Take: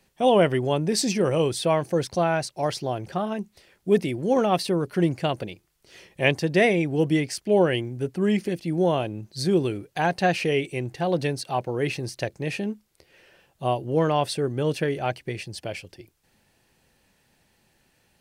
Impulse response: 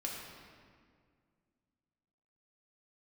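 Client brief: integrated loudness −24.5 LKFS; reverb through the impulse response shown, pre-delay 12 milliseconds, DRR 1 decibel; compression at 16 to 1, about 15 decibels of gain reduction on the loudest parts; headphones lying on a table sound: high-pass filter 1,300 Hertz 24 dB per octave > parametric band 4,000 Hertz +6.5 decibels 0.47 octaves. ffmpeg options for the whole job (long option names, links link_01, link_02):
-filter_complex "[0:a]acompressor=threshold=-29dB:ratio=16,asplit=2[link_01][link_02];[1:a]atrim=start_sample=2205,adelay=12[link_03];[link_02][link_03]afir=irnorm=-1:irlink=0,volume=-2.5dB[link_04];[link_01][link_04]amix=inputs=2:normalize=0,highpass=frequency=1300:width=0.5412,highpass=frequency=1300:width=1.3066,equalizer=frequency=4000:width_type=o:width=0.47:gain=6.5,volume=13.5dB"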